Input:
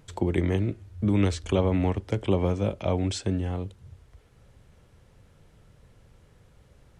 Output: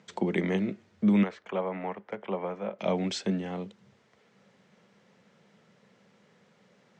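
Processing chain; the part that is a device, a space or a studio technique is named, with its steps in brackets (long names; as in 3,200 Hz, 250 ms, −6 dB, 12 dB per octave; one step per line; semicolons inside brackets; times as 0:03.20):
0:01.23–0:02.79: three-way crossover with the lows and the highs turned down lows −13 dB, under 530 Hz, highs −21 dB, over 2,100 Hz
television speaker (loudspeaker in its box 190–6,800 Hz, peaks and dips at 200 Hz +8 dB, 300 Hz −8 dB, 2,000 Hz +4 dB)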